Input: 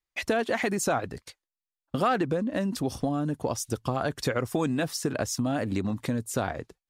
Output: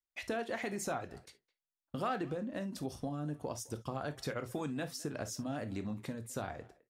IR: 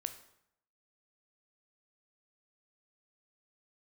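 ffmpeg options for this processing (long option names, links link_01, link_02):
-filter_complex "[0:a]asplit=2[link_01][link_02];[link_02]adelay=210,highpass=300,lowpass=3400,asoftclip=type=hard:threshold=-23dB,volume=-21dB[link_03];[link_01][link_03]amix=inputs=2:normalize=0[link_04];[1:a]atrim=start_sample=2205,afade=type=out:start_time=0.14:duration=0.01,atrim=end_sample=6615,asetrate=57330,aresample=44100[link_05];[link_04][link_05]afir=irnorm=-1:irlink=0,volume=-7dB"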